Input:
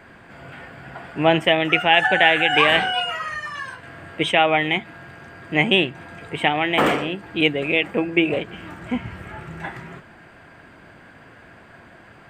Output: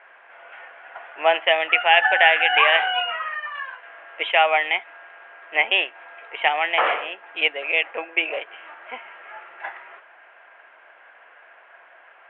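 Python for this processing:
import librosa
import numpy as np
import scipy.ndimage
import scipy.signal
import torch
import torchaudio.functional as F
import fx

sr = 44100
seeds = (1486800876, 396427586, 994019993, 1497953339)

p1 = scipy.signal.sosfilt(scipy.signal.butter(4, 590.0, 'highpass', fs=sr, output='sos'), x)
p2 = np.sign(p1) * np.maximum(np.abs(p1) - 10.0 ** (-33.0 / 20.0), 0.0)
p3 = p1 + F.gain(torch.from_numpy(p2), -12.0).numpy()
p4 = scipy.signal.sosfilt(scipy.signal.butter(8, 3100.0, 'lowpass', fs=sr, output='sos'), p3)
y = F.gain(torch.from_numpy(p4), -1.0).numpy()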